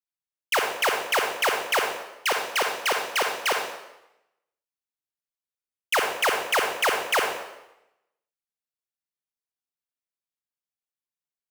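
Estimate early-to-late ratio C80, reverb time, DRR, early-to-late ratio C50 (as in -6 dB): 6.0 dB, 0.90 s, 2.0 dB, 3.5 dB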